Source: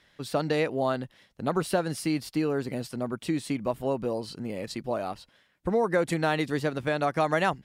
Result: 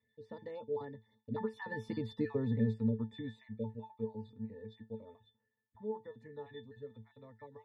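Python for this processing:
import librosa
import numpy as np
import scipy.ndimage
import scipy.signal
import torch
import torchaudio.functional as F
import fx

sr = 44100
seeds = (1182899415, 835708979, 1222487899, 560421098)

y = fx.spec_dropout(x, sr, seeds[0], share_pct=23)
y = fx.doppler_pass(y, sr, speed_mps=29, closest_m=11.0, pass_at_s=2.12)
y = fx.octave_resonator(y, sr, note='A', decay_s=0.18)
y = y * 10.0 ** (13.0 / 20.0)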